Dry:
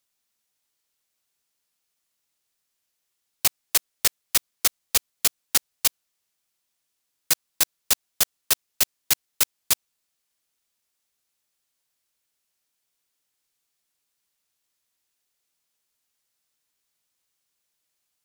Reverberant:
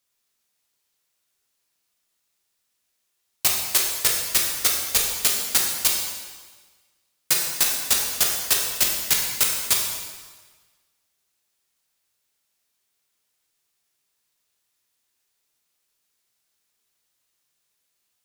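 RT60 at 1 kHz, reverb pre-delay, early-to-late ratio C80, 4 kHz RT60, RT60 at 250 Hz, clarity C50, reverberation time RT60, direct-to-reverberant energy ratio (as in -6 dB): 1.4 s, 6 ms, 4.0 dB, 1.3 s, 1.4 s, 2.0 dB, 1.4 s, -1.5 dB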